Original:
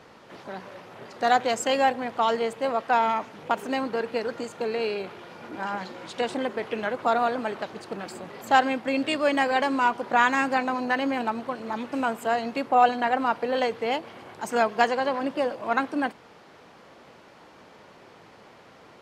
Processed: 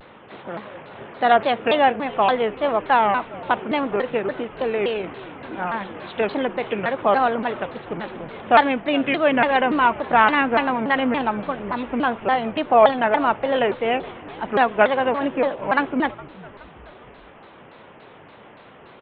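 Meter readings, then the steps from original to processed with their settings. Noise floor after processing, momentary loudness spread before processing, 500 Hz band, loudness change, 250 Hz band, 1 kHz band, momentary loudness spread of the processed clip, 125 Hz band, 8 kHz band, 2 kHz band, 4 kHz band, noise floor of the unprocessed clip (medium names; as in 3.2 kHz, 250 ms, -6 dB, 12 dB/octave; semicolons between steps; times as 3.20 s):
-46 dBFS, 15 LU, +6.0 dB, +5.0 dB, +5.0 dB, +4.5 dB, 16 LU, +9.0 dB, under -35 dB, +5.0 dB, +3.5 dB, -52 dBFS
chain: resampled via 8 kHz; on a send: frequency-shifting echo 416 ms, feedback 50%, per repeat -110 Hz, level -20 dB; on the sum: vibrato with a chosen wave saw down 3.5 Hz, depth 250 cents; trim +5 dB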